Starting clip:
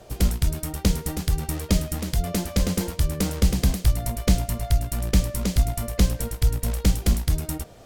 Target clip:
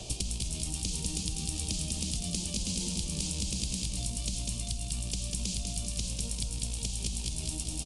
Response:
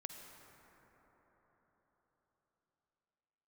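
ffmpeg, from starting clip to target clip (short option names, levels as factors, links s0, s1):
-filter_complex "[0:a]alimiter=limit=0.126:level=0:latency=1:release=57,lowshelf=f=680:t=q:w=1.5:g=-6,bandreject=f=2000:w=8.9,aecho=1:1:196|392|588|784|980|1176|1372:0.447|0.25|0.14|0.0784|0.0439|0.0246|0.0138,acompressor=threshold=0.0126:ratio=6,aresample=22050,aresample=44100,acrossover=split=330|3600[s0][s1][s2];[s0]acompressor=threshold=0.00447:ratio=4[s3];[s1]acompressor=threshold=0.00126:ratio=4[s4];[s2]acompressor=threshold=0.00447:ratio=4[s5];[s3][s4][s5]amix=inputs=3:normalize=0,firequalizer=gain_entry='entry(220,0);entry(1500,-21);entry(2600,2)':delay=0.05:min_phase=1,asplit=2[s6][s7];[1:a]atrim=start_sample=2205[s8];[s7][s8]afir=irnorm=-1:irlink=0,volume=1.5[s9];[s6][s9]amix=inputs=2:normalize=0,volume=2.51"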